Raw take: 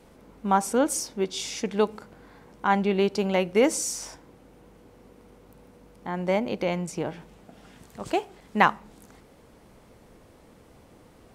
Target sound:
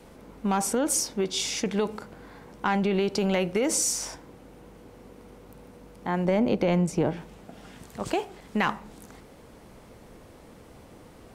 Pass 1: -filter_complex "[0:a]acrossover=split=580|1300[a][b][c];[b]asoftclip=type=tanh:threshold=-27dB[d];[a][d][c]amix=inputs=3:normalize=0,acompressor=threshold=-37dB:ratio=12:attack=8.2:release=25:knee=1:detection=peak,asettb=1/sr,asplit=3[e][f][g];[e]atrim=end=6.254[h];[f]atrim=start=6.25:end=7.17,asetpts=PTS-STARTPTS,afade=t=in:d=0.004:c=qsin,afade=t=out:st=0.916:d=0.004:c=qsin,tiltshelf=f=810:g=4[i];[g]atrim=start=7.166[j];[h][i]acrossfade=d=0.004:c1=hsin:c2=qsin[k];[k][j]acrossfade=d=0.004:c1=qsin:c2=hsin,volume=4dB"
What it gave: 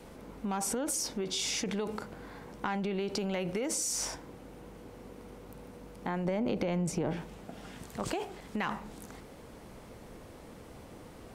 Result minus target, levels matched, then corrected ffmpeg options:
compressor: peak gain reduction +8.5 dB
-filter_complex "[0:a]acrossover=split=580|1300[a][b][c];[b]asoftclip=type=tanh:threshold=-27dB[d];[a][d][c]amix=inputs=3:normalize=0,acompressor=threshold=-27.5dB:ratio=12:attack=8.2:release=25:knee=1:detection=peak,asettb=1/sr,asplit=3[e][f][g];[e]atrim=end=6.254[h];[f]atrim=start=6.25:end=7.17,asetpts=PTS-STARTPTS,afade=t=in:d=0.004:c=qsin,afade=t=out:st=0.916:d=0.004:c=qsin,tiltshelf=f=810:g=4[i];[g]atrim=start=7.166[j];[h][i]acrossfade=d=0.004:c1=hsin:c2=qsin[k];[k][j]acrossfade=d=0.004:c1=qsin:c2=hsin,volume=4dB"

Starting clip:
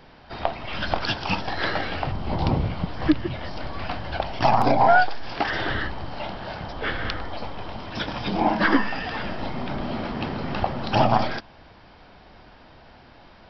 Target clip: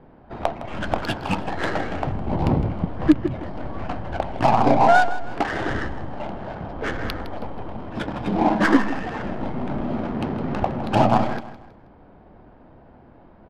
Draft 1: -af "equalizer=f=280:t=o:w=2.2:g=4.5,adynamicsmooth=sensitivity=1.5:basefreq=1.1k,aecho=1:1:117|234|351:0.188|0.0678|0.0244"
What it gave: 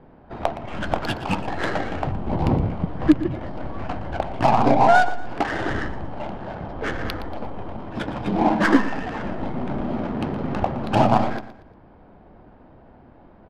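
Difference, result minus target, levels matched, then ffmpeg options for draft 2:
echo 43 ms early
-af "equalizer=f=280:t=o:w=2.2:g=4.5,adynamicsmooth=sensitivity=1.5:basefreq=1.1k,aecho=1:1:160|320|480:0.188|0.0678|0.0244"

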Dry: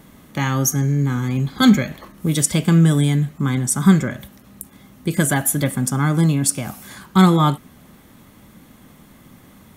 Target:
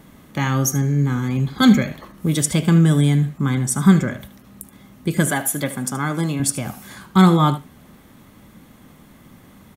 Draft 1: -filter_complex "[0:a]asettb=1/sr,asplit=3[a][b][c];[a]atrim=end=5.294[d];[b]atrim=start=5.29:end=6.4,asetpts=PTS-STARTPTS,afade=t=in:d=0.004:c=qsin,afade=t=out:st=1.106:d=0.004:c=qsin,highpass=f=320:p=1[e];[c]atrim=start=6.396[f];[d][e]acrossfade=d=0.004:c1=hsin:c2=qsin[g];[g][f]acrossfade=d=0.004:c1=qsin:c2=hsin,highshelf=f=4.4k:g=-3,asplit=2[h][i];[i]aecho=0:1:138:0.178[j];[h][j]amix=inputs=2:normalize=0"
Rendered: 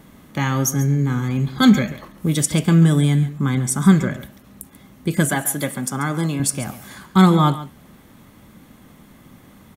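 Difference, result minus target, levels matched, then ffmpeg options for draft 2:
echo 62 ms late
-filter_complex "[0:a]asettb=1/sr,asplit=3[a][b][c];[a]atrim=end=5.294[d];[b]atrim=start=5.29:end=6.4,asetpts=PTS-STARTPTS,afade=t=in:d=0.004:c=qsin,afade=t=out:st=1.106:d=0.004:c=qsin,highpass=f=320:p=1[e];[c]atrim=start=6.396[f];[d][e]acrossfade=d=0.004:c1=hsin:c2=qsin[g];[g][f]acrossfade=d=0.004:c1=qsin:c2=hsin,highshelf=f=4.4k:g=-3,asplit=2[h][i];[i]aecho=0:1:76:0.178[j];[h][j]amix=inputs=2:normalize=0"

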